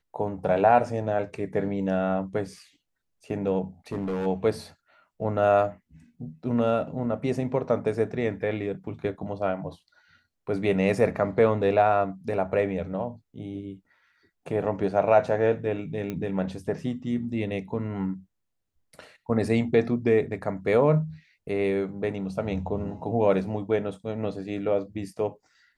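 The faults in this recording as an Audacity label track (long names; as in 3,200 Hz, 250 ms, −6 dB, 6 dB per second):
3.920000	4.270000	clipping −25 dBFS
16.100000	16.100000	click −19 dBFS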